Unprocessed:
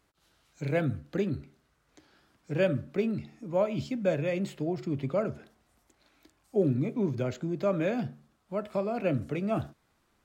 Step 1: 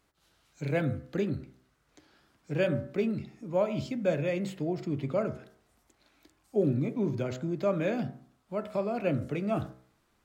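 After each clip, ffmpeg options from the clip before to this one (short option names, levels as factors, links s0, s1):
-af "bandreject=f=63.72:t=h:w=4,bandreject=f=127.44:t=h:w=4,bandreject=f=191.16:t=h:w=4,bandreject=f=254.88:t=h:w=4,bandreject=f=318.6:t=h:w=4,bandreject=f=382.32:t=h:w=4,bandreject=f=446.04:t=h:w=4,bandreject=f=509.76:t=h:w=4,bandreject=f=573.48:t=h:w=4,bandreject=f=637.2:t=h:w=4,bandreject=f=700.92:t=h:w=4,bandreject=f=764.64:t=h:w=4,bandreject=f=828.36:t=h:w=4,bandreject=f=892.08:t=h:w=4,bandreject=f=955.8:t=h:w=4,bandreject=f=1019.52:t=h:w=4,bandreject=f=1083.24:t=h:w=4,bandreject=f=1146.96:t=h:w=4,bandreject=f=1210.68:t=h:w=4,bandreject=f=1274.4:t=h:w=4,bandreject=f=1338.12:t=h:w=4,bandreject=f=1401.84:t=h:w=4,bandreject=f=1465.56:t=h:w=4,bandreject=f=1529.28:t=h:w=4,bandreject=f=1593:t=h:w=4,bandreject=f=1656.72:t=h:w=4,bandreject=f=1720.44:t=h:w=4,bandreject=f=1784.16:t=h:w=4,bandreject=f=1847.88:t=h:w=4,bandreject=f=1911.6:t=h:w=4,bandreject=f=1975.32:t=h:w=4,bandreject=f=2039.04:t=h:w=4,bandreject=f=2102.76:t=h:w=4,bandreject=f=2166.48:t=h:w=4"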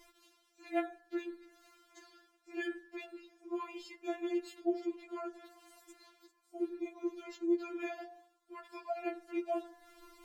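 -af "areverse,acompressor=mode=upward:threshold=0.0158:ratio=2.5,areverse,afftfilt=real='re*4*eq(mod(b,16),0)':imag='im*4*eq(mod(b,16),0)':win_size=2048:overlap=0.75,volume=0.631"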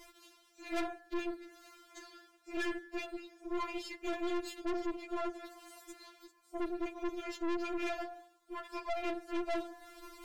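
-af "aeval=exprs='(tanh(141*val(0)+0.7)-tanh(0.7))/141':c=same,volume=3.16"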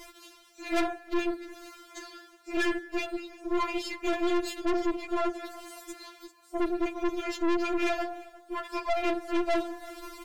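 -filter_complex "[0:a]asplit=2[s0][s1];[s1]adelay=349.9,volume=0.1,highshelf=f=4000:g=-7.87[s2];[s0][s2]amix=inputs=2:normalize=0,volume=2.66"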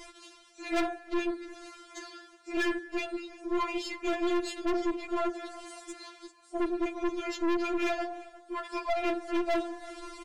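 -af "aresample=22050,aresample=44100,aeval=exprs='0.106*(cos(1*acos(clip(val(0)/0.106,-1,1)))-cos(1*PI/2))+0.0133*(cos(2*acos(clip(val(0)/0.106,-1,1)))-cos(2*PI/2))+0.00376*(cos(6*acos(clip(val(0)/0.106,-1,1)))-cos(6*PI/2))':c=same"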